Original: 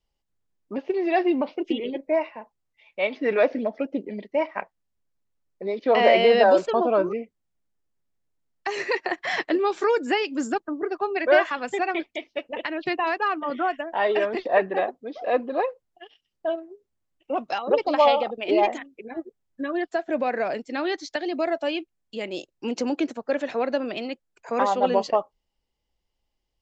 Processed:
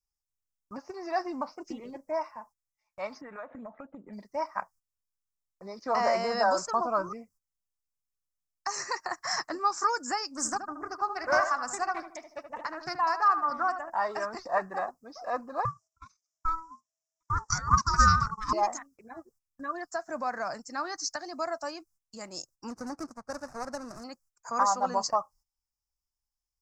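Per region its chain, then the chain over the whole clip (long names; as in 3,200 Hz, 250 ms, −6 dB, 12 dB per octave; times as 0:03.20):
0:03.21–0:04.13: downward compressor 12 to 1, threshold −28 dBFS + bad sample-rate conversion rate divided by 6×, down none, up filtered
0:10.29–0:13.90: feedback echo with a low-pass in the loop 76 ms, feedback 36%, low-pass 1,800 Hz, level −8 dB + highs frequency-modulated by the lows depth 0.15 ms
0:15.65–0:18.53: low-pass with resonance 6,400 Hz, resonance Q 6.7 + ring modulation 650 Hz
0:22.70–0:24.04: running median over 41 samples + high-frequency loss of the air 59 metres
whole clip: noise gate −50 dBFS, range −13 dB; drawn EQ curve 110 Hz 0 dB, 420 Hz −18 dB, 1,200 Hz +4 dB, 3,300 Hz −27 dB, 5,200 Hz +11 dB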